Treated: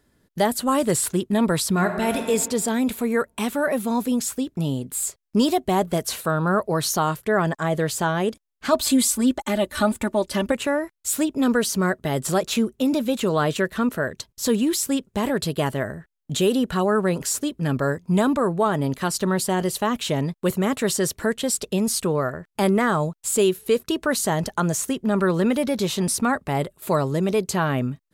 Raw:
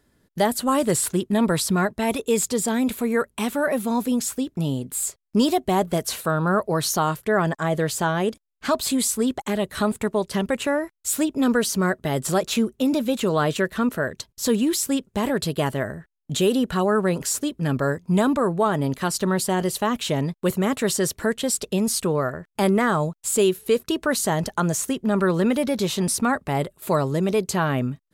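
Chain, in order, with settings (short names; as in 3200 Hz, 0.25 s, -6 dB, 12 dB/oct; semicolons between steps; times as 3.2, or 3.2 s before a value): 1.71–2.23 reverb throw, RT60 1.6 s, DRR 5 dB; 8.72–10.52 comb 3.4 ms, depth 81%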